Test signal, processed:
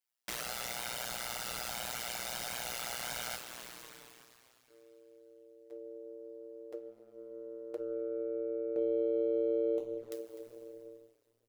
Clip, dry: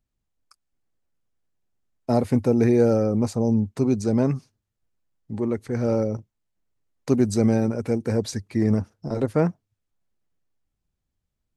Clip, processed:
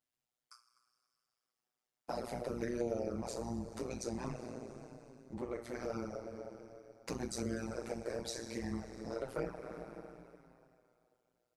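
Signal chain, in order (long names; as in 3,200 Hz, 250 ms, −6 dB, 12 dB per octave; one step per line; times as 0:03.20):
sub-octave generator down 2 octaves, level −3 dB
high-pass filter 700 Hz 6 dB per octave
coupled-rooms reverb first 0.27 s, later 2.6 s, from −16 dB, DRR −1.5 dB
in parallel at −11.5 dB: soft clipping −21 dBFS
on the sum: flanger swept by the level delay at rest 8 ms, full sweep at −15.5 dBFS
on a send: single-tap delay 252 ms −20 dB
on the sum: amplitude modulation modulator 120 Hz, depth 95%
downward compressor 2 to 1, threshold −42 dBFS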